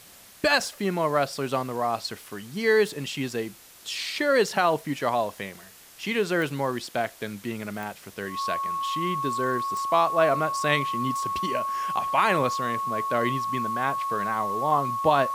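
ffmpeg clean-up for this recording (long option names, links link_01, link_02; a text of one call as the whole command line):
ffmpeg -i in.wav -af "adeclick=threshold=4,bandreject=frequency=1100:width=30,afwtdn=0.0035" out.wav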